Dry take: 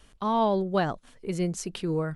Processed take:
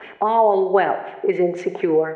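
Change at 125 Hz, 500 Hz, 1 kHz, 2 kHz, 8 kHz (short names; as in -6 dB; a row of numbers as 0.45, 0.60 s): -5.0 dB, +11.0 dB, +10.0 dB, +10.0 dB, under -10 dB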